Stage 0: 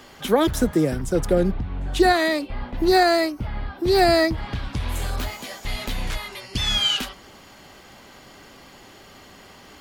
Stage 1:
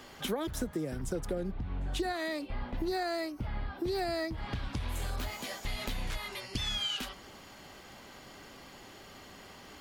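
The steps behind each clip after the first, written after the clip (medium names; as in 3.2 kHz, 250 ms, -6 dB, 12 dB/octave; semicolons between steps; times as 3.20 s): compression 6:1, threshold -27 dBFS, peak gain reduction 14.5 dB; trim -4.5 dB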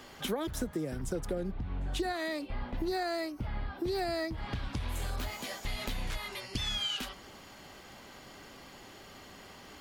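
no audible change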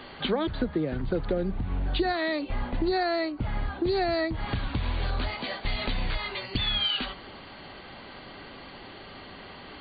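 brick-wall FIR low-pass 4.7 kHz; de-hum 67.85 Hz, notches 3; trim +7 dB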